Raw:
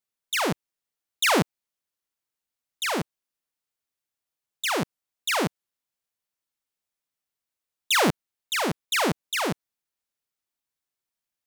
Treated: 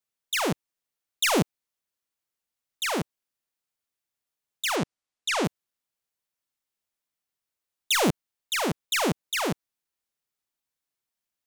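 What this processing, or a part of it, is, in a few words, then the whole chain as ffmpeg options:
one-band saturation: -filter_complex "[0:a]acrossover=split=530|3000[s0][s1][s2];[s1]asoftclip=type=tanh:threshold=0.0631[s3];[s0][s3][s2]amix=inputs=3:normalize=0,asplit=3[s4][s5][s6];[s4]afade=t=out:st=4.75:d=0.02[s7];[s5]lowpass=8400,afade=t=in:st=4.75:d=0.02,afade=t=out:st=5.43:d=0.02[s8];[s6]afade=t=in:st=5.43:d=0.02[s9];[s7][s8][s9]amix=inputs=3:normalize=0"

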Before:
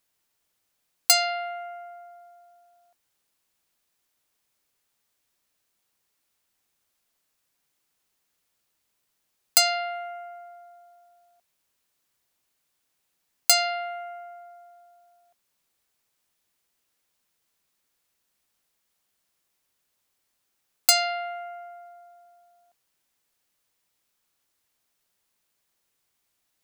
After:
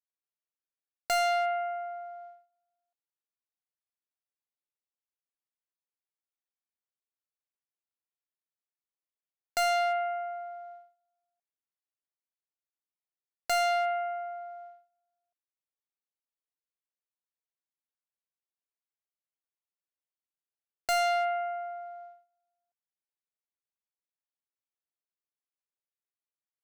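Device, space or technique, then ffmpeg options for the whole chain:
walkie-talkie: -af "highpass=400,lowpass=2900,lowshelf=f=410:g=9,asoftclip=type=hard:threshold=0.0422,agate=range=0.0398:threshold=0.00316:ratio=16:detection=peak,volume=1.41"

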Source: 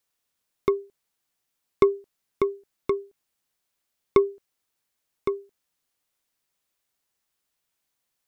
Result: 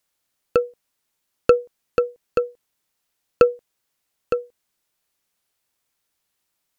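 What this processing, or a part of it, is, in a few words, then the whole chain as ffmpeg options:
nightcore: -af "asetrate=53802,aresample=44100,volume=1.68"

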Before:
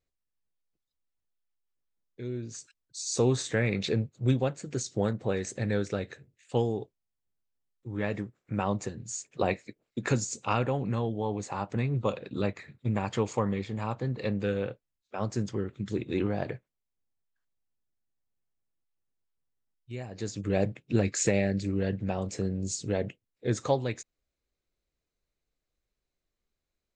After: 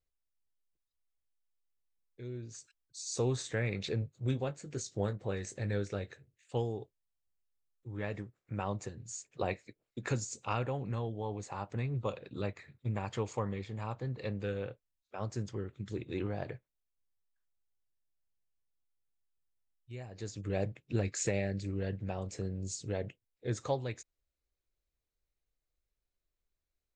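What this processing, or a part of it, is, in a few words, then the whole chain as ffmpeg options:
low shelf boost with a cut just above: -filter_complex "[0:a]lowshelf=f=89:g=7,equalizer=f=220:t=o:w=0.94:g=-4.5,asettb=1/sr,asplit=3[s0][s1][s2];[s0]atrim=end=4.004[s3];[s1]atrim=start=4:end=6.08,asetpts=PTS-STARTPTS,afade=t=in:d=0.004:c=qsin,afade=t=out:st=2.076:d=0.004:c=qsin,asplit=2[s4][s5];[s5]adelay=20,volume=0.299[s6];[s4][s6]amix=inputs=2:normalize=0,atrim=end_sample=91728[s7];[s2]atrim=start=6.076[s8];[s3][s7]acrossfade=d=0.004:c1=hsin:c2=qsin[s9];[s9][s8]acrossfade=d=0.004:c1=qsin:c2=hsin,volume=0.473"

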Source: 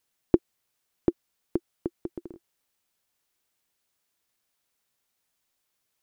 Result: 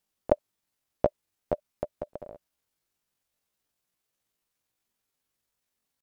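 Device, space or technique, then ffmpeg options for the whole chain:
chipmunk voice: -af "asetrate=76340,aresample=44100,atempo=0.577676,lowshelf=f=460:g=5.5,volume=0.794"

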